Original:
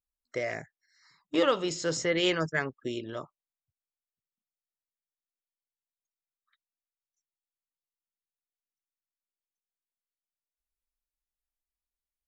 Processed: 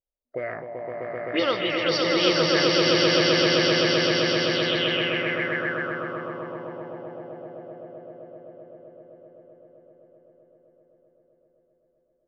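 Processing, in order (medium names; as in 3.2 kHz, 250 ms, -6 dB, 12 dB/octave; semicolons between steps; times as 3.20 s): knee-point frequency compression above 3.5 kHz 1.5:1; echo with a slow build-up 129 ms, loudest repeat 8, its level -3 dB; touch-sensitive low-pass 580–4800 Hz up, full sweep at -20.5 dBFS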